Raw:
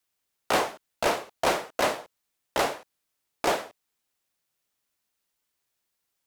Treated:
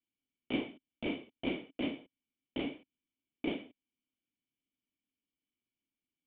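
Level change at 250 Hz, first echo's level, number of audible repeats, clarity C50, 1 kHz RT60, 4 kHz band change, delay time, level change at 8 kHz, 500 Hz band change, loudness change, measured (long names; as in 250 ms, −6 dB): +1.0 dB, no echo audible, no echo audible, no reverb audible, no reverb audible, −11.5 dB, no echo audible, below −40 dB, −14.0 dB, −11.5 dB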